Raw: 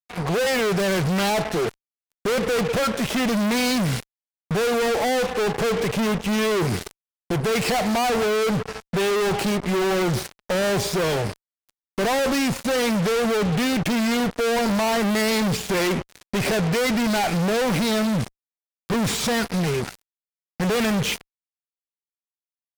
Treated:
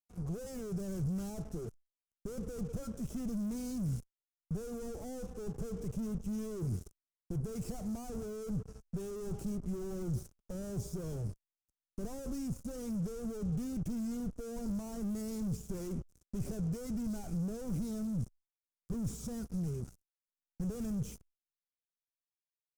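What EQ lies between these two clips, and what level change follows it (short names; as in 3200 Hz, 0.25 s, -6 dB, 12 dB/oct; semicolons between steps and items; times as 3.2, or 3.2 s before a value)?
passive tone stack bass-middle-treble 10-0-1; band shelf 2800 Hz -16 dB; high shelf 9800 Hz -3.5 dB; +3.0 dB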